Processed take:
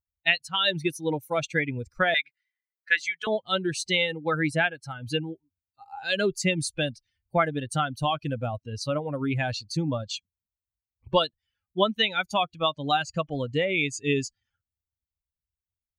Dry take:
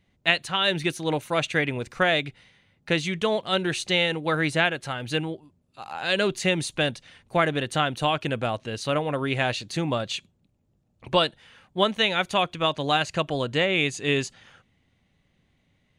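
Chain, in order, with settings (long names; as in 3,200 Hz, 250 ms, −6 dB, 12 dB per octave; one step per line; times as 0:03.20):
spectral dynamics exaggerated over time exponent 2
in parallel at +1 dB: downward compressor, threshold −33 dBFS, peak gain reduction 14 dB
0:02.14–0:03.27: on the sum: high-pass with resonance 1,600 Hz, resonance Q 6.9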